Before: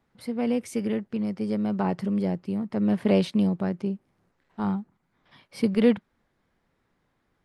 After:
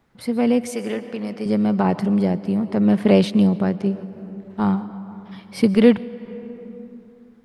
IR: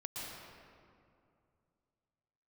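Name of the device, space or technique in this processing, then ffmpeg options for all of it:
compressed reverb return: -filter_complex "[0:a]asettb=1/sr,asplit=3[a][b][c];[a]atrim=end=0.724[d];[b]atrim=start=0.72:end=1.46,asetpts=PTS-STARTPTS,afade=t=in:d=0.004:c=qsin,afade=t=out:st=0.736:d=0.004:c=qsin,highpass=f=560:p=1[e];[c]atrim=start=1.456[f];[d][e]acrossfade=d=0.004:c1=hsin:c2=qsin[g];[g][f]acrossfade=d=0.004:c1=qsin:c2=hsin,asplit=2[h][i];[1:a]atrim=start_sample=2205[j];[i][j]afir=irnorm=-1:irlink=0,acompressor=threshold=-28dB:ratio=6,volume=-7.5dB[k];[h][k]amix=inputs=2:normalize=0,volume=6dB"

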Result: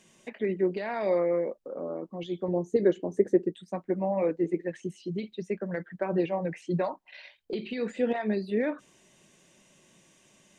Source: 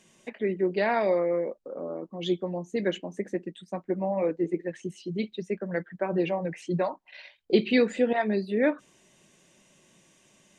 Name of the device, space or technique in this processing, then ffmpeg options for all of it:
de-esser from a sidechain: -filter_complex "[0:a]asplit=2[a][b];[b]highpass=5.9k,apad=whole_len=466918[c];[a][c]sidechaincompress=threshold=-55dB:ratio=4:attack=2.2:release=80,asettb=1/sr,asplit=3[d][e][f];[d]atrim=end=2.484[g];[e]atrim=start=2.48:end=3.55,asetpts=PTS-STARTPTS,afade=t=in:d=0.004:c=qsin,afade=t=out:st=1.066:d=0.004:c=qsin,equalizer=f=100:t=o:w=0.67:g=11,equalizer=f=400:t=o:w=0.67:g=11,equalizer=f=2.5k:t=o:w=0.67:g=-9[h];[f]atrim=start=3.546[i];[g][h]acrossfade=d=0.004:c1=hsin:c2=qsin[j];[j][i]acrossfade=d=0.004:c1=qsin:c2=hsin"

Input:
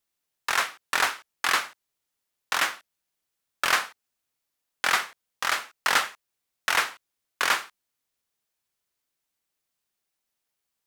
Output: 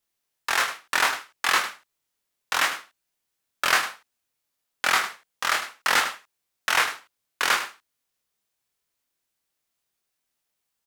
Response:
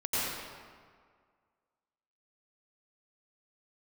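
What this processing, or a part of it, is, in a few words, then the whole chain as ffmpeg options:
slapback doubling: -filter_complex "[0:a]asplit=3[a][b][c];[b]adelay=25,volume=-3dB[d];[c]adelay=103,volume=-10.5dB[e];[a][d][e]amix=inputs=3:normalize=0"

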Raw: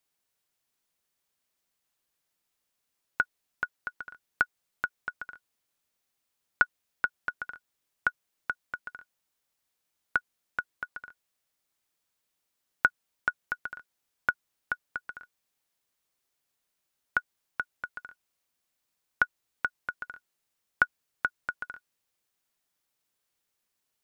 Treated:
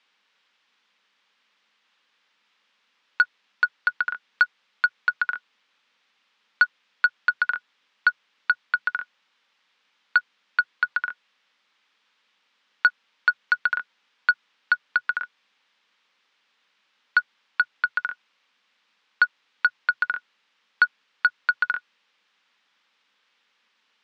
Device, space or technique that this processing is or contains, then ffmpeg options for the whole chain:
overdrive pedal into a guitar cabinet: -filter_complex "[0:a]highpass=f=210:w=0.5412,highpass=f=210:w=1.3066,aemphasis=mode=production:type=50fm,equalizer=f=4.3k:w=4.5:g=-3,asplit=2[a][b];[b]highpass=f=720:p=1,volume=26dB,asoftclip=type=tanh:threshold=-6dB[c];[a][c]amix=inputs=2:normalize=0,lowpass=f=3.6k:p=1,volume=-6dB,highpass=78,equalizer=f=130:t=q:w=4:g=9,equalizer=f=200:t=q:w=4:g=7,equalizer=f=360:t=q:w=4:g=-8,equalizer=f=670:t=q:w=4:g=-10,lowpass=f=4k:w=0.5412,lowpass=f=4k:w=1.3066"

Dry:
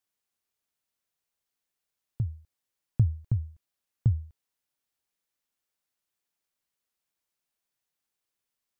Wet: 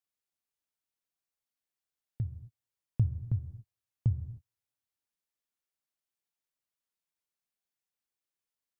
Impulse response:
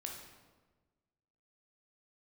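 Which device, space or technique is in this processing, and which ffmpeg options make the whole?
keyed gated reverb: -filter_complex "[0:a]asplit=3[a][b][c];[1:a]atrim=start_sample=2205[d];[b][d]afir=irnorm=-1:irlink=0[e];[c]apad=whole_len=387764[f];[e][f]sidechaingate=range=-52dB:threshold=-51dB:ratio=16:detection=peak,volume=-3dB[g];[a][g]amix=inputs=2:normalize=0,volume=-7.5dB"

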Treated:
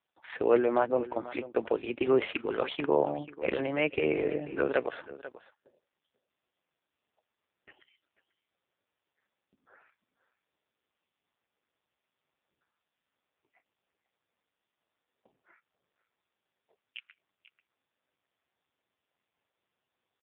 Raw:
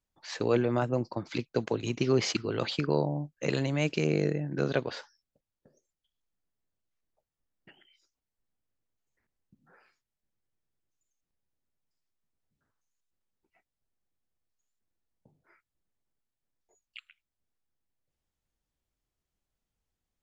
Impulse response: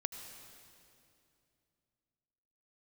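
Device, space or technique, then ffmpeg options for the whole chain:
satellite phone: -af "highpass=390,lowpass=3.3k,aecho=1:1:490:0.15,volume=5.5dB" -ar 8000 -c:a libopencore_amrnb -b:a 5150

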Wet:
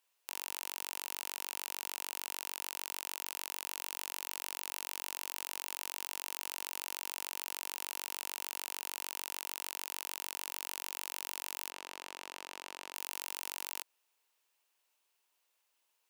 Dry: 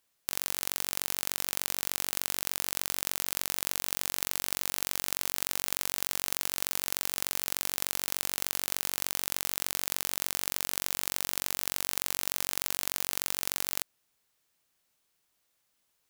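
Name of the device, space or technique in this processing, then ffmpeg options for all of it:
laptop speaker: -filter_complex "[0:a]highpass=f=340:w=0.5412,highpass=f=340:w=1.3066,equalizer=f=940:t=o:w=0.31:g=7.5,equalizer=f=2.7k:t=o:w=0.35:g=6,alimiter=limit=-9dB:level=0:latency=1:release=30,asplit=3[a][b][c];[a]afade=t=out:st=11.69:d=0.02[d];[b]aemphasis=mode=reproduction:type=bsi,afade=t=in:st=11.69:d=0.02,afade=t=out:st=12.93:d=0.02[e];[c]afade=t=in:st=12.93:d=0.02[f];[d][e][f]amix=inputs=3:normalize=0,volume=-4dB"

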